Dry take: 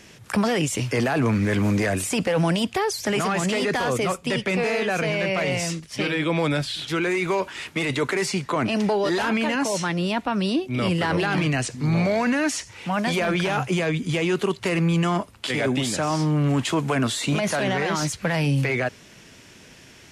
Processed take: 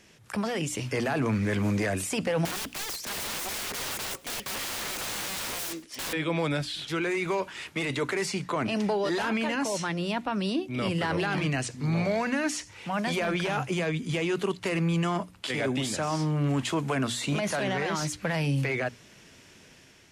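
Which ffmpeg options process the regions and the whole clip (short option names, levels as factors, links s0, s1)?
-filter_complex "[0:a]asettb=1/sr,asplit=3[s0][s1][s2];[s0]atrim=end=2.454[s3];[s1]atrim=start=2.45:end=6.13,asetpts=PTS-STARTPTS,afade=t=in:d=0.004:c=qsin,afade=t=out:st=3.676:d=0.004:c=qsin,lowshelf=f=210:t=q:w=3:g=-8.5,aeval=exprs='(mod(15.8*val(0)+1,2)-1)/15.8':c=same,aecho=1:1:104:0.0668,atrim=end_sample=162288[s4];[s2]atrim=start=6.126[s5];[s3][s4]acrossfade=d=0.004:c1=hsin:c2=qsin[s6];[s6][s5]acrossfade=d=0.004:c1=qsin:c2=hsin,bandreject=f=60:t=h:w=6,bandreject=f=120:t=h:w=6,bandreject=f=180:t=h:w=6,bandreject=f=240:t=h:w=6,bandreject=f=300:t=h:w=6,dynaudnorm=f=260:g=5:m=1.58,volume=0.355"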